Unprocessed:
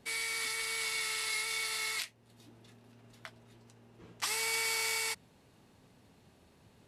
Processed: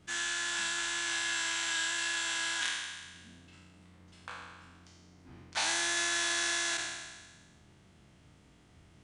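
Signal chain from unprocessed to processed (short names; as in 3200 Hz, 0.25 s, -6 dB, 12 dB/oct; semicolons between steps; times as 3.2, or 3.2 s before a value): spectral trails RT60 1.08 s; bell 700 Hz -5.5 dB 0.65 oct; varispeed -24%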